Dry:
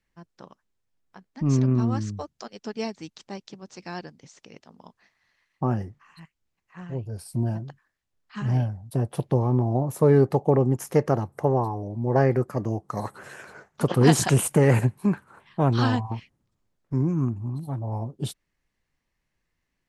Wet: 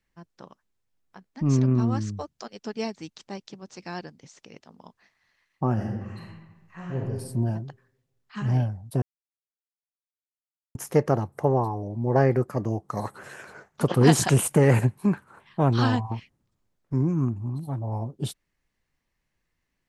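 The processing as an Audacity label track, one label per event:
5.730000	7.030000	reverb throw, RT60 1.2 s, DRR -2.5 dB
9.020000	10.750000	mute

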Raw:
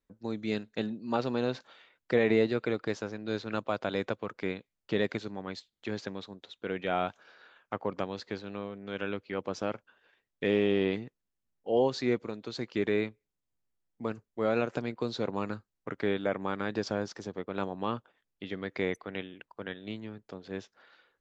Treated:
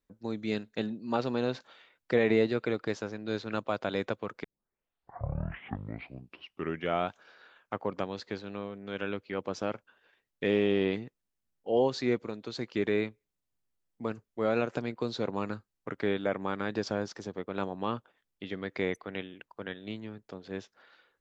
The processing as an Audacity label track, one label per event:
4.440000	4.440000	tape start 2.63 s

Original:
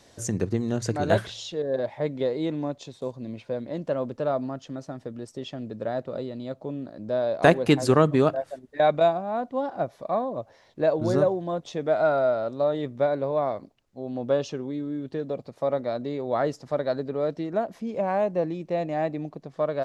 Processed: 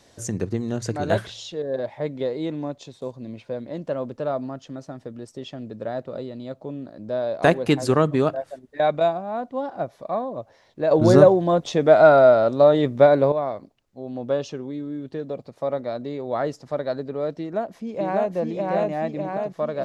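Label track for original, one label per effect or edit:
10.910000	13.320000	gain +9.5 dB
17.400000	18.320000	echo throw 600 ms, feedback 65%, level -0.5 dB

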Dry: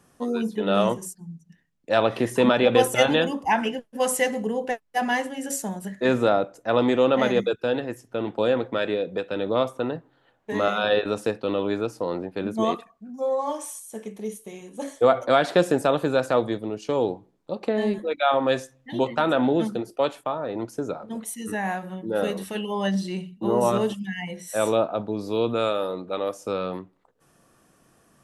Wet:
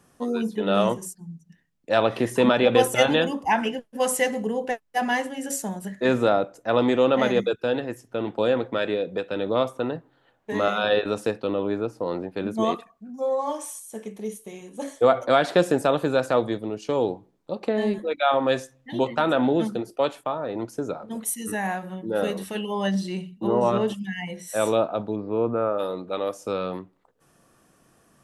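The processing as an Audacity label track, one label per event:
11.470000	12.060000	treble shelf 2.1 kHz -9.5 dB
21.110000	21.670000	treble shelf 7.9 kHz +10.5 dB
23.470000	23.880000	low-pass 3.7 kHz
25.150000	25.780000	low-pass 2.3 kHz -> 1.4 kHz 24 dB/octave

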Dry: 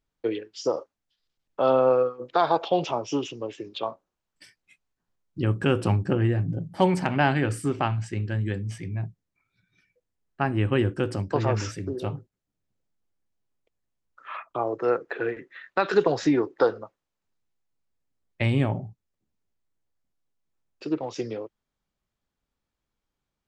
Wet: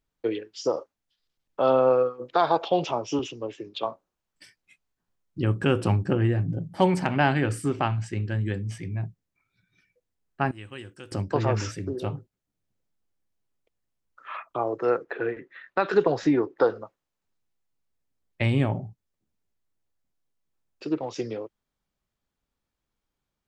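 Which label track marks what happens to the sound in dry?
3.190000	3.860000	three bands expanded up and down depth 40%
10.510000	11.120000	pre-emphasis filter coefficient 0.9
15.040000	16.700000	treble shelf 3.6 kHz -8 dB

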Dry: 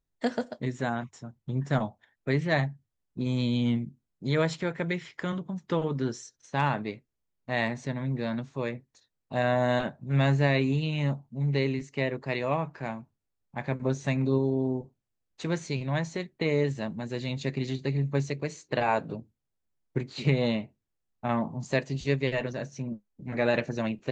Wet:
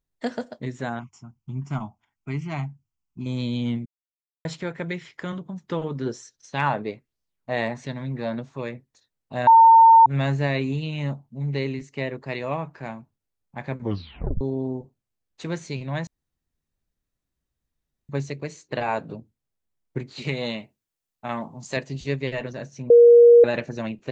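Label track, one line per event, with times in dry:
0.990000	3.260000	static phaser centre 2.6 kHz, stages 8
3.860000	4.450000	mute
6.060000	8.610000	sweeping bell 1.3 Hz 430–5300 Hz +9 dB
9.470000	10.060000	bleep 907 Hz -8 dBFS
13.790000	13.790000	tape stop 0.62 s
16.070000	18.090000	room tone
20.220000	21.770000	tilt EQ +2 dB/octave
22.900000	23.440000	bleep 474 Hz -7.5 dBFS

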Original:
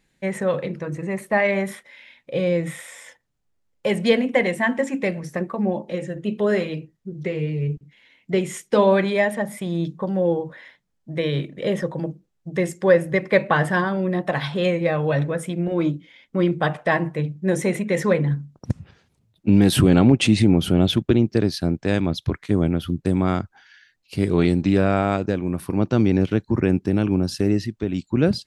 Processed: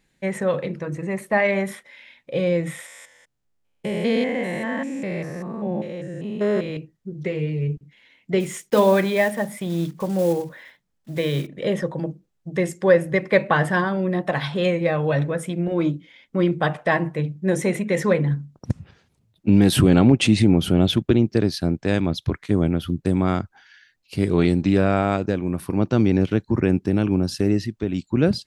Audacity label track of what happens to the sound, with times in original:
2.860000	6.770000	spectrogram pixelated in time every 200 ms
8.400000	11.470000	block-companded coder 5-bit

